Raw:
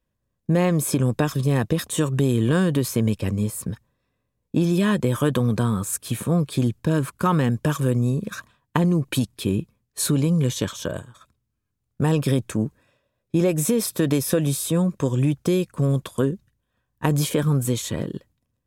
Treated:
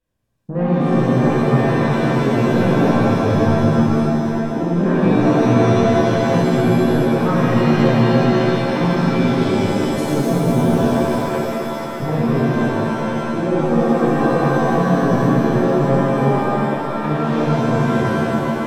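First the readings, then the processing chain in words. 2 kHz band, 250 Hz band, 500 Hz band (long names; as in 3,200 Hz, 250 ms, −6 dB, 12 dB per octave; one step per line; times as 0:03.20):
+9.5 dB, +7.5 dB, +9.0 dB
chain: soft clipping −16.5 dBFS, distortion −14 dB
treble cut that deepens with the level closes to 1,500 Hz, closed at −24.5 dBFS
reverb with rising layers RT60 3.3 s, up +7 semitones, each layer −2 dB, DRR −9 dB
level −3.5 dB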